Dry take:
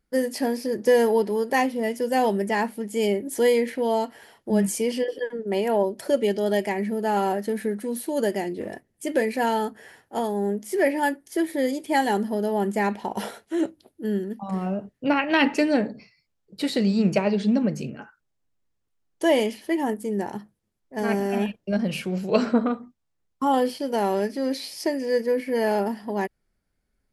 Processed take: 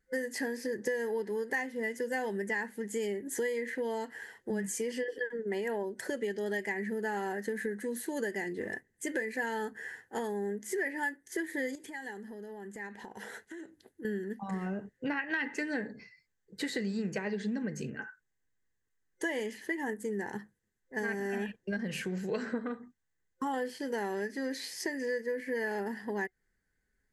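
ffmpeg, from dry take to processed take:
ffmpeg -i in.wav -filter_complex "[0:a]asettb=1/sr,asplit=3[link_01][link_02][link_03];[link_01]atrim=end=11.754[link_04];[link_02]atrim=start=11.75:end=14.05,asetpts=PTS-STARTPTS,afade=type=in:duration=0.004:curve=qsin,afade=type=out:start_time=2.296:duration=0.004:curve=qsin,acompressor=threshold=-37dB:ratio=10:attack=3.2:release=140:knee=1:detection=peak[link_05];[link_03]atrim=start=14.046[link_06];[link_04][link_05]acrossfade=duration=0.004:curve1=hsin:curve2=qsin[link_07];[link_07][link_06]acrossfade=duration=0.004:curve1=qsin:curve2=hsin,superequalizer=7b=1.41:8b=0.562:11b=3.98:15b=2,acompressor=threshold=-26dB:ratio=5,volume=-5.5dB" out.wav

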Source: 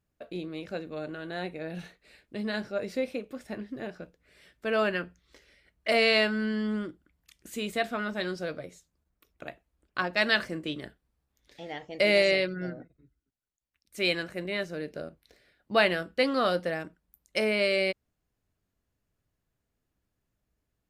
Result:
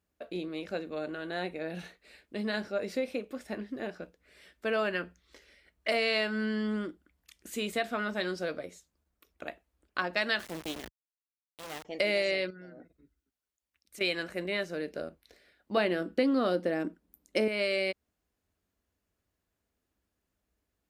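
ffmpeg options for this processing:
ffmpeg -i in.wav -filter_complex "[0:a]asettb=1/sr,asplit=3[link_01][link_02][link_03];[link_01]atrim=end=10.394[link_04];[link_02]atrim=start=10.39:end=11.85,asetpts=PTS-STARTPTS,afade=type=in:duration=0.004:curve=qsin,afade=type=out:start_time=1.456:duration=0.004:curve=qsin,acrusher=bits=4:dc=4:mix=0:aa=0.000001[link_05];[link_03]atrim=start=11.846[link_06];[link_04][link_05]acrossfade=duration=0.004:curve1=hsin:curve2=qsin[link_07];[link_07][link_06]acrossfade=duration=0.004:curve1=qsin:curve2=hsin,asettb=1/sr,asplit=3[link_08][link_09][link_10];[link_08]atrim=end=12.504[link_11];[link_09]atrim=start=12.5:end=14.01,asetpts=PTS-STARTPTS,afade=type=in:duration=0.004:curve=qsin,afade=type=out:start_time=1.506:duration=0.004:curve=qsin,acompressor=threshold=-45dB:ratio=6:attack=3.2:release=140:knee=1:detection=peak[link_12];[link_10]atrim=start=14.006[link_13];[link_11][link_12]acrossfade=duration=0.004:curve1=hsin:curve2=qsin[link_14];[link_14][link_13]acrossfade=duration=0.004:curve1=qsin:curve2=hsin,asettb=1/sr,asplit=3[link_15][link_16][link_17];[link_15]atrim=end=15.774[link_18];[link_16]atrim=start=15.77:end=17.48,asetpts=PTS-STARTPTS,afade=type=in:duration=0.004:curve=qsin,afade=type=out:start_time=1.706:duration=0.004:curve=qsin,equalizer=frequency=280:width=0.88:gain=13.5[link_19];[link_17]atrim=start=17.476[link_20];[link_18][link_19]acrossfade=duration=0.004:curve1=hsin:curve2=qsin[link_21];[link_21][link_20]acrossfade=duration=0.004:curve1=qsin:curve2=hsin,highpass=48,equalizer=frequency=130:width=2.8:gain=-13.5,acompressor=threshold=-28dB:ratio=3,volume=1dB" out.wav

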